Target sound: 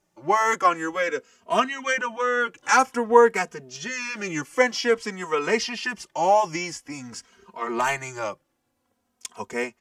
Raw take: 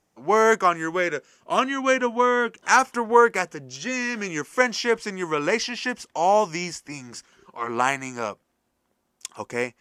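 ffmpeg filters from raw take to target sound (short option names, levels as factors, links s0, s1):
-filter_complex "[0:a]asettb=1/sr,asplit=3[s0][s1][s2];[s0]atrim=end=6.984[s3];[s1]atrim=start=6.98:end=8.19,asetpts=PTS-STARTPTS,afade=t=in:d=0.004:c=qsin,afade=t=out:st=1.206:d=0.004:c=qsin,aeval=exprs='0.562*(cos(1*acos(clip(val(0)/0.562,-1,1)))-cos(1*PI/2))+0.0562*(cos(3*acos(clip(val(0)/0.562,-1,1)))-cos(3*PI/2))+0.0501*(cos(5*acos(clip(val(0)/0.562,-1,1)))-cos(5*PI/2))':c=same[s4];[s2]atrim=start=8.186[s5];[s3][s4]acrossfade=d=0.004:c1=hsin:c2=qsin[s6];[s6][s5]acrossfade=d=0.004:c1=qsin:c2=hsin,asplit=2[s7][s8];[s8]adelay=2.9,afreqshift=-0.5[s9];[s7][s9]amix=inputs=2:normalize=1,volume=1.33"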